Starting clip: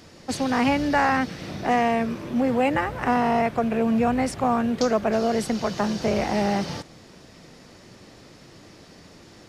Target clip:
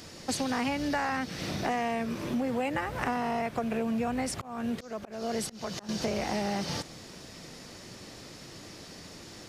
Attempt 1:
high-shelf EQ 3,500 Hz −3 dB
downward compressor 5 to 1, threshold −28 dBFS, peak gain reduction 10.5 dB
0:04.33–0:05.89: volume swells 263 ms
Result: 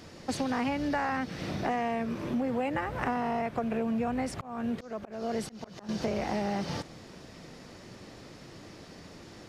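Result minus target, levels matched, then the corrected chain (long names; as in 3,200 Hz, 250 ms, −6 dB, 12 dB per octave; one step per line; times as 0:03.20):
8,000 Hz band −7.5 dB
high-shelf EQ 3,500 Hz +7.5 dB
downward compressor 5 to 1, threshold −28 dBFS, peak gain reduction 11 dB
0:04.33–0:05.89: volume swells 263 ms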